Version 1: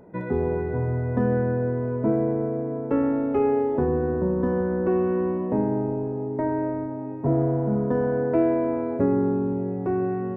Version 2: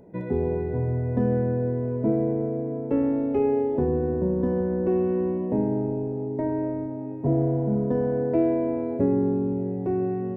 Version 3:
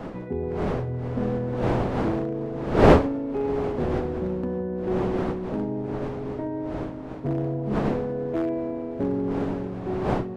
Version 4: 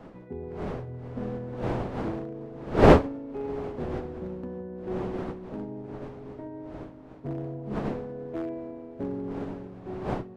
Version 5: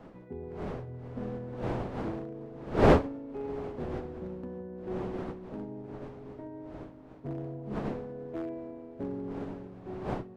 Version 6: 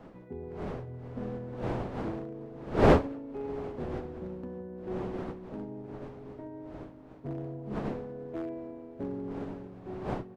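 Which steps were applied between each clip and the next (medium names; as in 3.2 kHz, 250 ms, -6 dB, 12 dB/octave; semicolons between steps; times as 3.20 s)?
peaking EQ 1.3 kHz -11.5 dB 1 oct
one-sided wavefolder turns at -16 dBFS; wind noise 530 Hz -24 dBFS; trim -4 dB
upward expansion 1.5:1, over -34 dBFS
saturation -6.5 dBFS, distortion -17 dB; trim -3.5 dB
speakerphone echo 210 ms, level -29 dB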